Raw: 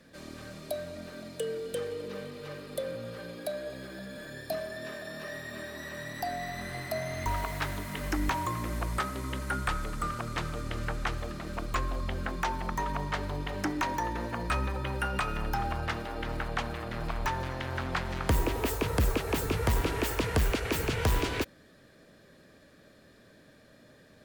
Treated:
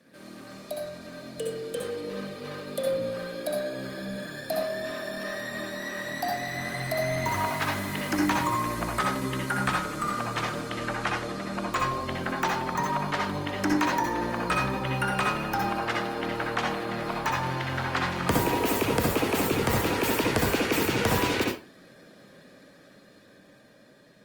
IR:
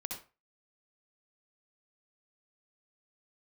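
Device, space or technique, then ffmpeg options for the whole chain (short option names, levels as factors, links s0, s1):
far-field microphone of a smart speaker: -filter_complex "[0:a]asettb=1/sr,asplit=3[s0][s1][s2];[s0]atrim=end=10.614[s3];[s1]atrim=start=10.61:end=11.74,asetpts=PTS-STARTPTS,afade=t=in:d=0.004:c=qsin,afade=t=out:st=1.126:d=0.004:c=qsin,lowpass=f=12000:w=0.5412,lowpass=f=12000:w=1.3066[s4];[s2]atrim=start=11.736[s5];[s3][s4]acrossfade=d=0.004:c1=hsin:c2=qsin[s6];[s6][s5]acrossfade=d=0.004:c1=qsin:c2=hsin[s7];[1:a]atrim=start_sample=2205[s8];[s7][s8]afir=irnorm=-1:irlink=0,highpass=150,dynaudnorm=f=570:g=7:m=1.68,volume=1.26" -ar 48000 -c:a libopus -b:a 32k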